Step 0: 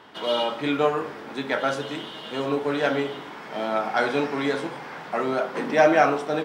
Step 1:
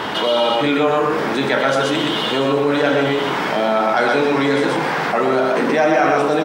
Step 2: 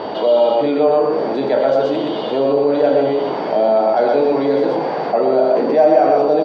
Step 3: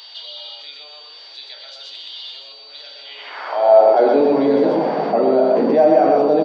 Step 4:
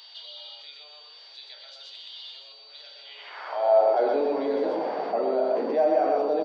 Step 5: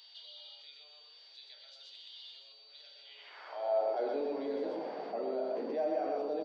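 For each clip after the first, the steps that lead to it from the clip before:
on a send: loudspeakers at several distances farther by 15 m -11 dB, 42 m -3 dB; on the sum: fast leveller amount 70%
whine 4600 Hz -35 dBFS; EQ curve 150 Hz 0 dB, 640 Hz +12 dB, 1300 Hz -5 dB, 1900 Hz -7 dB, 4600 Hz -4 dB, 11000 Hz -29 dB; gain -6 dB
reverse echo 1.122 s -13 dB; high-pass sweep 3900 Hz -> 190 Hz, 3–4.27; gain -2 dB
HPF 360 Hz 12 dB/oct; gain -8.5 dB
bell 1000 Hz -5.5 dB 1.8 oct; gain -8 dB

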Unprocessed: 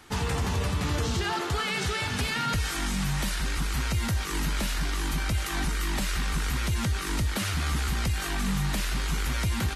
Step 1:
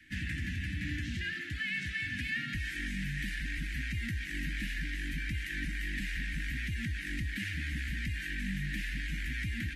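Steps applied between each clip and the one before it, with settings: Chebyshev band-stop 310–1700 Hz, order 5; three-band isolator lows -13 dB, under 470 Hz, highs -22 dB, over 2100 Hz; in parallel at -3 dB: vocal rider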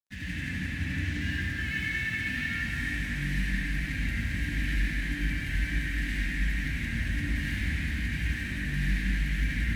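crossover distortion -50 dBFS; reverb RT60 4.1 s, pre-delay 63 ms, DRR -7.5 dB; gain -2 dB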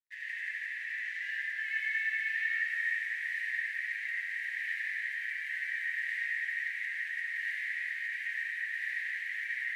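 ladder high-pass 1800 Hz, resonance 80%

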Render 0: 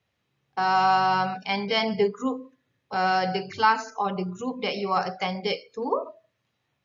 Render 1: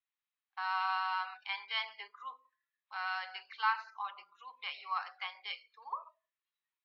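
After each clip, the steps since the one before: Chebyshev band-pass 1000–4000 Hz, order 3; spectral noise reduction 10 dB; gain -8 dB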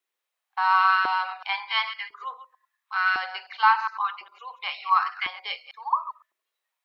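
reverse delay 0.102 s, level -12 dB; LFO high-pass saw up 0.95 Hz 350–1600 Hz; gain +8.5 dB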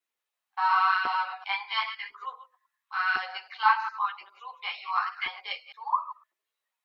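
ensemble effect

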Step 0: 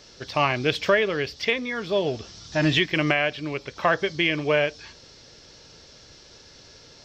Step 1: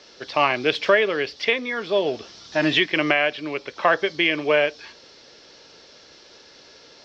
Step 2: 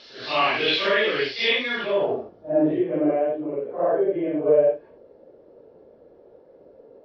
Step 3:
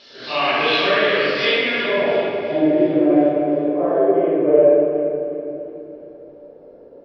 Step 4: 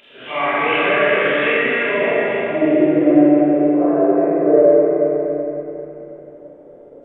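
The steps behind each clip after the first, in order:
three-band isolator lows -16 dB, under 230 Hz, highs -17 dB, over 5800 Hz; gain +3 dB
phase scrambler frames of 0.2 s; in parallel at +0.5 dB: limiter -13.5 dBFS, peak gain reduction 7 dB; on the sum: low-pass sweep 4000 Hz -> 530 Hz, 1.74–2.32; gain -7.5 dB
split-band echo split 1400 Hz, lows 0.105 s, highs 0.355 s, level -13 dB; reverb RT60 3.0 s, pre-delay 5 ms, DRR -4.5 dB; gain -1 dB
nonlinear frequency compression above 1600 Hz 1.5:1; delay with a stepping band-pass 0.29 s, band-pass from 1500 Hz, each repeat 0.7 oct, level -6 dB; Schroeder reverb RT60 2.7 s, combs from 27 ms, DRR 1.5 dB; gain -1 dB

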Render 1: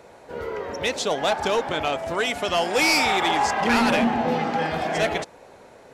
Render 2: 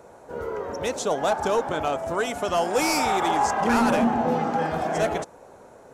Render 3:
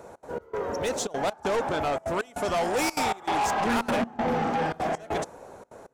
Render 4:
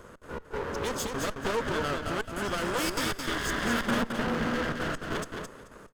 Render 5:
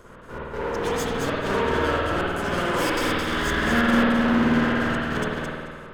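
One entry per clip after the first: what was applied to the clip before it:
band shelf 3000 Hz -8.5 dB
step gate "xx.xx..xxxxx" 197 bpm -24 dB; soft clip -24.5 dBFS, distortion -10 dB; gain +2.5 dB
minimum comb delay 0.61 ms; on a send: feedback echo 0.217 s, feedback 18%, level -5 dB; on the sum: gain -1.5 dB
spring tank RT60 1.6 s, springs 51 ms, chirp 50 ms, DRR -6 dB

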